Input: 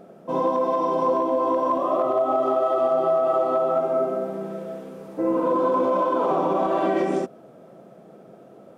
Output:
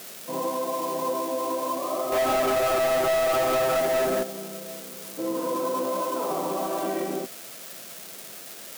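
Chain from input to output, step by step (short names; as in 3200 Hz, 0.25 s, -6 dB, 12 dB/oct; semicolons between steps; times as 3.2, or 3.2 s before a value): switching spikes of -19 dBFS; 2.12–4.23 sample leveller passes 3; gain -6.5 dB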